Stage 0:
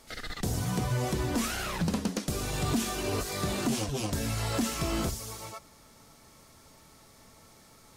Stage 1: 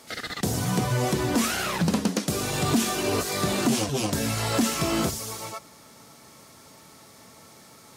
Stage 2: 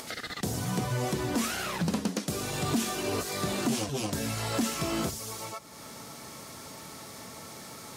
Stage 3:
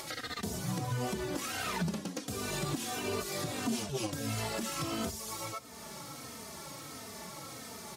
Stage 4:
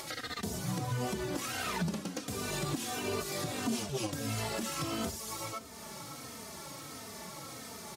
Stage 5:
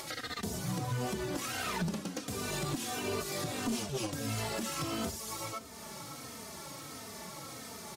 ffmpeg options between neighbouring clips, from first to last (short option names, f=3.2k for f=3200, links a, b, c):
-af "highpass=120,volume=6.5dB"
-af "acompressor=mode=upward:threshold=-27dB:ratio=2.5,volume=-5.5dB"
-filter_complex "[0:a]alimiter=limit=-24dB:level=0:latency=1:release=292,asplit=2[a][b];[b]adelay=3.1,afreqshift=-1.5[c];[a][c]amix=inputs=2:normalize=1,volume=2dB"
-af "aecho=1:1:568:0.126"
-af "aeval=exprs='clip(val(0),-1,0.0335)':c=same"